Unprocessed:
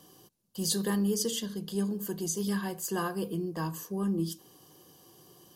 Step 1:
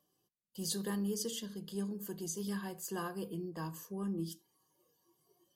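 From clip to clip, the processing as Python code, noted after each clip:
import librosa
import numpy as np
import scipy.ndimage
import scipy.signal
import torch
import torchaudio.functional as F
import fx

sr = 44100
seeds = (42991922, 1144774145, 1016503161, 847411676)

y = fx.noise_reduce_blind(x, sr, reduce_db=15)
y = F.gain(torch.from_numpy(y), -7.5).numpy()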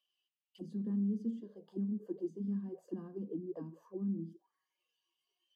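y = fx.auto_wah(x, sr, base_hz=230.0, top_hz=2900.0, q=6.9, full_db=-36.0, direction='down')
y = F.gain(torch.from_numpy(y), 9.5).numpy()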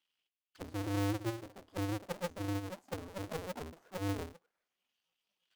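y = fx.cycle_switch(x, sr, every=2, mode='inverted')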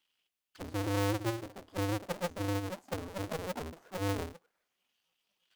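y = fx.transformer_sat(x, sr, knee_hz=240.0)
y = F.gain(torch.from_numpy(y), 5.0).numpy()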